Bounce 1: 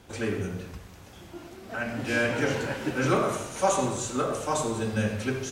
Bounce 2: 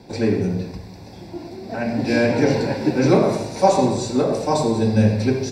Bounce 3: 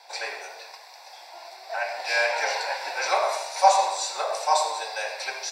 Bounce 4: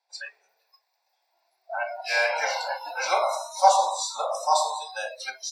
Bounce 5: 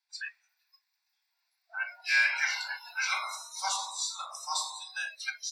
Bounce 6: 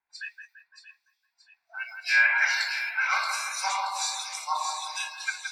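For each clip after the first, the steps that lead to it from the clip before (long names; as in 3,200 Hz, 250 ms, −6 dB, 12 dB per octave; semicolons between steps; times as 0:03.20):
convolution reverb RT60 0.35 s, pre-delay 3 ms, DRR 20.5 dB
Butterworth high-pass 690 Hz 36 dB per octave; level +2.5 dB
noise reduction from a noise print of the clip's start 29 dB
high-pass filter 1,300 Hz 24 dB per octave; dynamic equaliser 2,000 Hz, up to +5 dB, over −41 dBFS, Q 1.3; level −3 dB
two-band tremolo in antiphase 1.3 Hz, depth 100%, crossover 2,300 Hz; echo with a time of its own for lows and highs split 2,300 Hz, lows 170 ms, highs 627 ms, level −5.5 dB; one half of a high-frequency compander decoder only; level +8.5 dB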